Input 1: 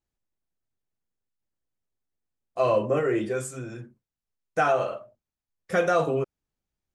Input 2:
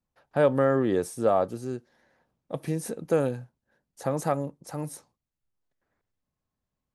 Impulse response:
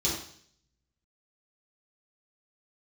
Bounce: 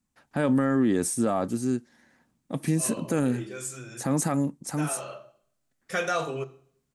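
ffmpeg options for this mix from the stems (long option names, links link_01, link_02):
-filter_complex "[0:a]tiltshelf=frequency=1100:gain=-6.5,adelay=200,volume=-3dB,asplit=2[link_01][link_02];[link_02]volume=-20.5dB[link_03];[1:a]equalizer=frequency=250:width_type=o:width=1:gain=10,equalizer=frequency=500:width_type=o:width=1:gain=-7,equalizer=frequency=2000:width_type=o:width=1:gain=4,equalizer=frequency=8000:width_type=o:width=1:gain=11,volume=2dB,asplit=2[link_04][link_05];[link_05]apad=whole_len=315283[link_06];[link_01][link_06]sidechaincompress=threshold=-36dB:ratio=8:attack=16:release=316[link_07];[2:a]atrim=start_sample=2205[link_08];[link_03][link_08]afir=irnorm=-1:irlink=0[link_09];[link_07][link_04][link_09]amix=inputs=3:normalize=0,alimiter=limit=-15.5dB:level=0:latency=1:release=16"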